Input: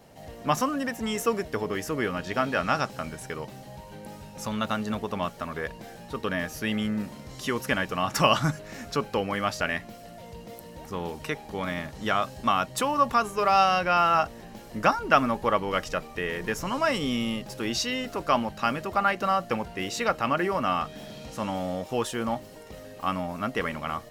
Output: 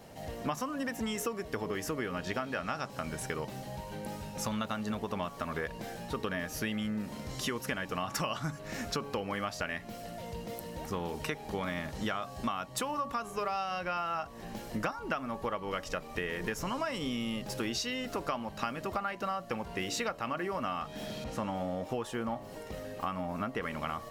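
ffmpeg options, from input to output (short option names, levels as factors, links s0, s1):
-filter_complex "[0:a]bandreject=f=141.4:t=h:w=4,bandreject=f=282.8:t=h:w=4,bandreject=f=424.2:t=h:w=4,bandreject=f=565.6:t=h:w=4,bandreject=f=707:t=h:w=4,bandreject=f=848.4:t=h:w=4,bandreject=f=989.8:t=h:w=4,bandreject=f=1131.2:t=h:w=4,acompressor=threshold=0.0224:ratio=10,asettb=1/sr,asplit=3[s0][s1][s2];[s0]atrim=end=21.244[s3];[s1]atrim=start=21.24:end=23.63,asetpts=PTS-STARTPTS,afade=t=in:d=0.004:c=qsin,afade=t=out:st=2.386:d=0.004:c=qsin,adynamicequalizer=threshold=0.00178:dfrequency=2700:dqfactor=0.7:tfrequency=2700:tqfactor=0.7:attack=5:release=100:ratio=0.375:range=3.5:mode=cutabove:tftype=highshelf[s4];[s2]atrim=start=23.626[s5];[s3][s4]acrossfade=d=0.004:c1=hsin:c2=qsin[s6];[s6][s5]acrossfade=d=0.004:c1=qsin:c2=hsin,volume=1.26"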